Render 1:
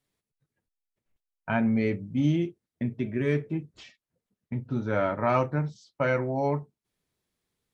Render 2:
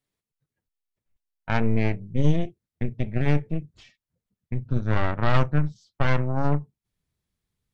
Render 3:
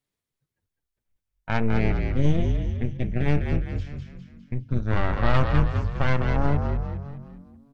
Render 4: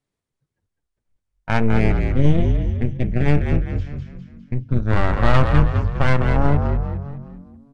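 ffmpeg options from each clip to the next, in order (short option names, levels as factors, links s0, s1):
-af "aeval=exprs='0.282*(cos(1*acos(clip(val(0)/0.282,-1,1)))-cos(1*PI/2))+0.0398*(cos(3*acos(clip(val(0)/0.282,-1,1)))-cos(3*PI/2))+0.126*(cos(4*acos(clip(val(0)/0.282,-1,1)))-cos(4*PI/2))+0.0178*(cos(5*acos(clip(val(0)/0.282,-1,1)))-cos(5*PI/2))':c=same,asubboost=boost=3.5:cutoff=180,volume=0.75"
-filter_complex "[0:a]asplit=7[s0][s1][s2][s3][s4][s5][s6];[s1]adelay=203,afreqshift=-46,volume=0.562[s7];[s2]adelay=406,afreqshift=-92,volume=0.275[s8];[s3]adelay=609,afreqshift=-138,volume=0.135[s9];[s4]adelay=812,afreqshift=-184,volume=0.0661[s10];[s5]adelay=1015,afreqshift=-230,volume=0.0324[s11];[s6]adelay=1218,afreqshift=-276,volume=0.0158[s12];[s0][s7][s8][s9][s10][s11][s12]amix=inputs=7:normalize=0,volume=0.891"
-filter_complex "[0:a]asplit=2[s0][s1];[s1]adynamicsmooth=sensitivity=7.5:basefreq=2100,volume=0.891[s2];[s0][s2]amix=inputs=2:normalize=0,aresample=22050,aresample=44100"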